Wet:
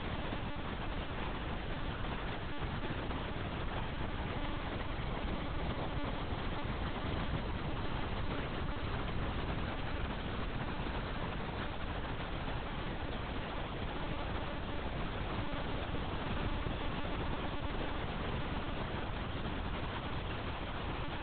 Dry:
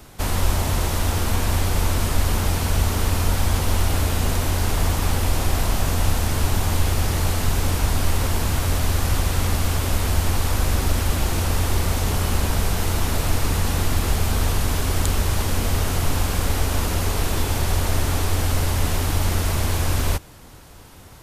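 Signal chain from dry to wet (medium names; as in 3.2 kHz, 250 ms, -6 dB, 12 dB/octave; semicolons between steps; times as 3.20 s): Paulstretch 35×, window 0.25 s, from 20.30 s; thinning echo 915 ms, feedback 66%, high-pass 150 Hz, level -13 dB; monotone LPC vocoder at 8 kHz 290 Hz; trim +7 dB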